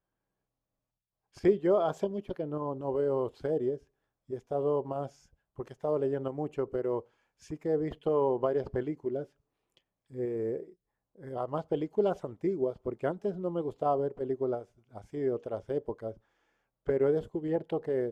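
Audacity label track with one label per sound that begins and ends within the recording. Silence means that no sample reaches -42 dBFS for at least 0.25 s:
1.370000	3.770000	sound
4.300000	5.070000	sound
5.590000	7.000000	sound
7.500000	9.240000	sound
10.140000	10.630000	sound
11.220000	14.630000	sound
14.950000	16.120000	sound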